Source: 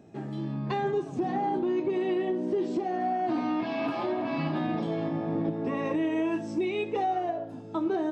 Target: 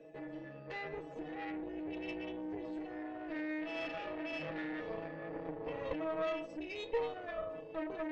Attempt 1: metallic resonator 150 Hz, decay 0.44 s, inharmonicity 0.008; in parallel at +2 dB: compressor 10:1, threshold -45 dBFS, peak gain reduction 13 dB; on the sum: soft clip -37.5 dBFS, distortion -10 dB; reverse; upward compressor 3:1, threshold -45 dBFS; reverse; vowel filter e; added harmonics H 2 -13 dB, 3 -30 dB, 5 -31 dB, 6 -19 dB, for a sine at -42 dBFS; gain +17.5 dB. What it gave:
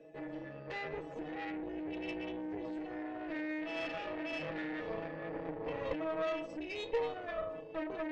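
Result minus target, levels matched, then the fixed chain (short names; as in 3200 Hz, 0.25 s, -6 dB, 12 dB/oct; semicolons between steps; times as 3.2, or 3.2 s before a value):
compressor: peak gain reduction -8 dB
metallic resonator 150 Hz, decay 0.44 s, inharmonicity 0.008; in parallel at +2 dB: compressor 10:1, threshold -54 dBFS, peak gain reduction 21.5 dB; on the sum: soft clip -37.5 dBFS, distortion -11 dB; reverse; upward compressor 3:1, threshold -45 dBFS; reverse; vowel filter e; added harmonics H 2 -13 dB, 3 -30 dB, 5 -31 dB, 6 -19 dB, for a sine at -42 dBFS; gain +17.5 dB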